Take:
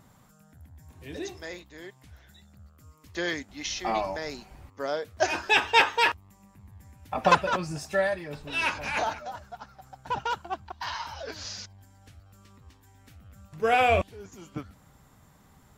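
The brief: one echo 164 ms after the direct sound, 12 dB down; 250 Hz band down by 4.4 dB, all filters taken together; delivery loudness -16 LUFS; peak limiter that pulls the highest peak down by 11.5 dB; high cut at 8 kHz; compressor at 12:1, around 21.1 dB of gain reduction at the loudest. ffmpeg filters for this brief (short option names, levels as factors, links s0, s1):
-af "lowpass=8000,equalizer=f=250:t=o:g=-7,acompressor=threshold=0.0158:ratio=12,alimiter=level_in=3.35:limit=0.0631:level=0:latency=1,volume=0.299,aecho=1:1:164:0.251,volume=29.9"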